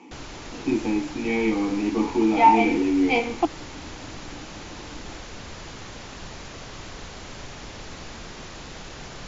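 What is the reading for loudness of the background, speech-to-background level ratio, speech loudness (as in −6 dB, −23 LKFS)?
−39.0 LKFS, 17.0 dB, −22.0 LKFS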